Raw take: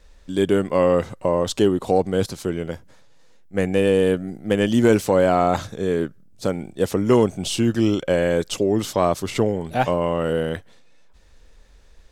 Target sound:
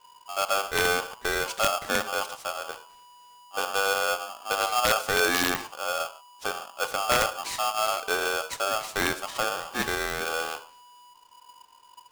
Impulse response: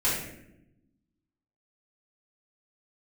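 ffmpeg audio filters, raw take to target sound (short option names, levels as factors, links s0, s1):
-filter_complex "[0:a]asplit=2[s0][s1];[1:a]atrim=start_sample=2205,atrim=end_sample=6615[s2];[s1][s2]afir=irnorm=-1:irlink=0,volume=0.0891[s3];[s0][s3]amix=inputs=2:normalize=0,aeval=exprs='(mod(1.88*val(0)+1,2)-1)/1.88':c=same,aeval=exprs='val(0)*sgn(sin(2*PI*980*n/s))':c=same,volume=0.376"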